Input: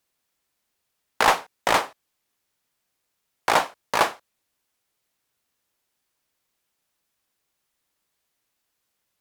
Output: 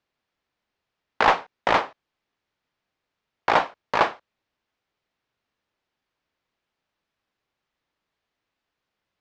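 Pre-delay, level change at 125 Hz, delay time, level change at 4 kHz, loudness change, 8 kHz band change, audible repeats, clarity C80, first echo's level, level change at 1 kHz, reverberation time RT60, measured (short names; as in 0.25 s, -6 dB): none, +1.5 dB, none, -3.5 dB, 0.0 dB, under -10 dB, none, none, none, +0.5 dB, none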